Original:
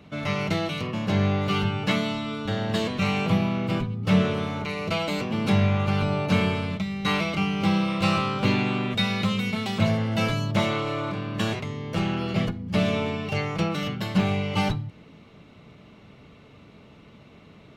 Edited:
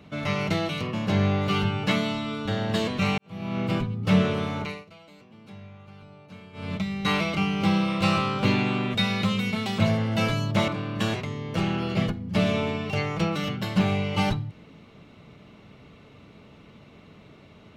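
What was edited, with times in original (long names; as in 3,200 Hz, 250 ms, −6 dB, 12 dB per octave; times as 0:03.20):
0:03.18–0:03.60: fade in quadratic
0:04.62–0:06.76: duck −23.5 dB, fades 0.23 s
0:10.68–0:11.07: remove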